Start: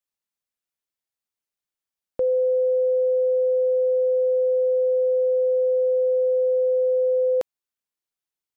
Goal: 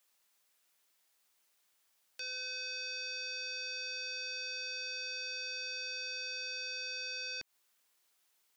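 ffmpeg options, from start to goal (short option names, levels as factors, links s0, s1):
-af "highpass=f=580:p=1,alimiter=level_in=2.66:limit=0.0631:level=0:latency=1:release=134,volume=0.376,aeval=exprs='0.0251*sin(PI/2*7.08*val(0)/0.0251)':c=same,volume=0.531"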